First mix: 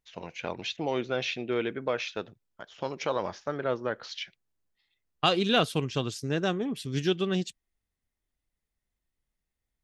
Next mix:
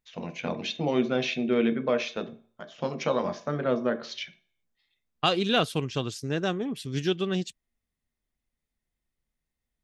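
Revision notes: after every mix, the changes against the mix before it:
reverb: on, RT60 0.50 s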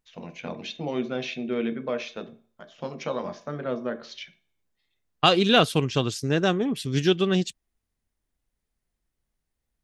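first voice -3.5 dB; second voice +5.5 dB

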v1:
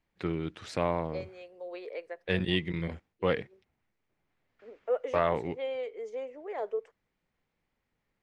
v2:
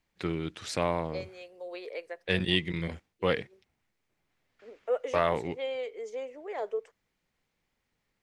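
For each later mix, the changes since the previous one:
master: add high shelf 3700 Hz +11.5 dB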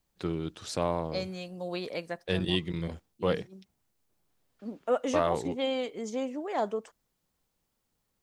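second voice: remove ladder high-pass 400 Hz, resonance 65%; master: add bell 2100 Hz -10 dB 0.81 oct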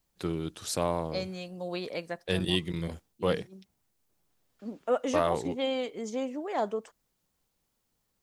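first voice: remove air absorption 68 m

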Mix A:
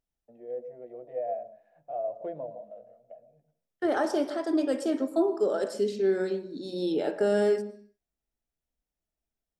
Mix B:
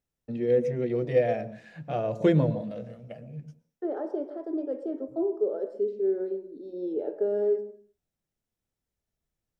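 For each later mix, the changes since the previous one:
first voice: remove band-pass 670 Hz, Q 6.8; second voice: add band-pass 430 Hz, Q 2.4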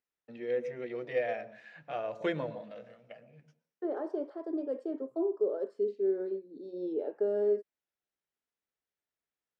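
first voice: add band-pass 1800 Hz, Q 0.74; second voice: send off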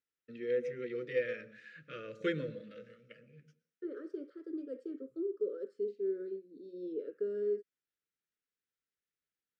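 second voice -4.5 dB; master: add Chebyshev band-stop 500–1300 Hz, order 3

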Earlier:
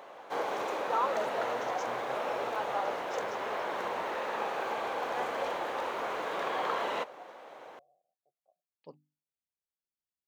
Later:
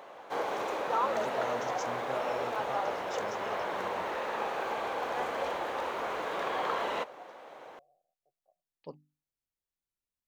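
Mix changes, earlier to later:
first voice +5.0 dB; master: remove HPF 110 Hz 6 dB/oct

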